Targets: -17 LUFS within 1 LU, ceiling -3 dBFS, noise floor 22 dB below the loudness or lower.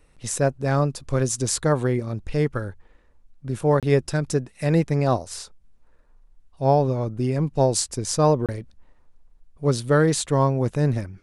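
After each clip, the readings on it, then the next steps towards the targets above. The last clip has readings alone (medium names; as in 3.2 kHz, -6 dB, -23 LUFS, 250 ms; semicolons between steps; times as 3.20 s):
dropouts 2; longest dropout 27 ms; loudness -23.0 LUFS; peak level -6.0 dBFS; loudness target -17.0 LUFS
-> interpolate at 3.80/8.46 s, 27 ms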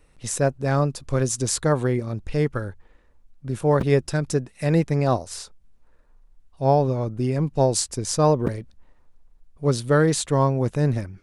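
dropouts 0; loudness -23.0 LUFS; peak level -6.0 dBFS; loudness target -17.0 LUFS
-> trim +6 dB; peak limiter -3 dBFS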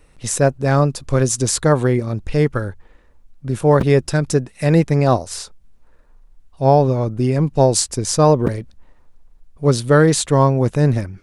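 loudness -17.0 LUFS; peak level -3.0 dBFS; noise floor -52 dBFS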